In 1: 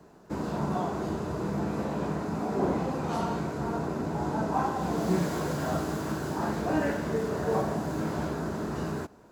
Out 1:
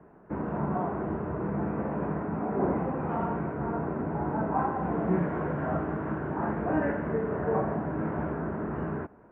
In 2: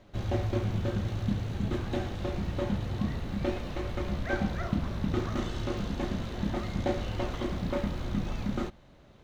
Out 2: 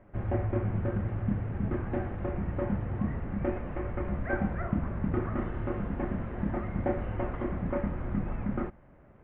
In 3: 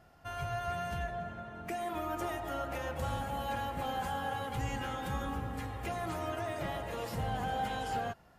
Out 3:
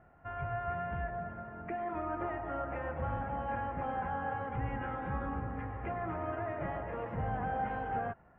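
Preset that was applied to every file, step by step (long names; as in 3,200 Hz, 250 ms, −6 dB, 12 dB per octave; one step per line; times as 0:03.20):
inverse Chebyshev low-pass filter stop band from 4,100 Hz, stop band 40 dB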